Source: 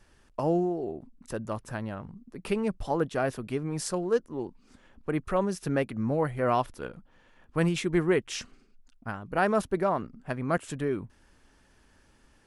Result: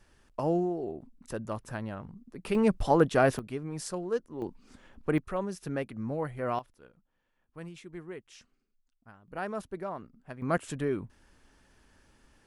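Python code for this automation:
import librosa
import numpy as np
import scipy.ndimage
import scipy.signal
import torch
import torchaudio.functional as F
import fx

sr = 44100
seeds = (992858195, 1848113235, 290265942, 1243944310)

y = fx.gain(x, sr, db=fx.steps((0.0, -2.0), (2.55, 5.0), (3.39, -5.0), (4.42, 2.0), (5.18, -6.0), (6.59, -18.0), (9.28, -10.5), (10.42, -1.0)))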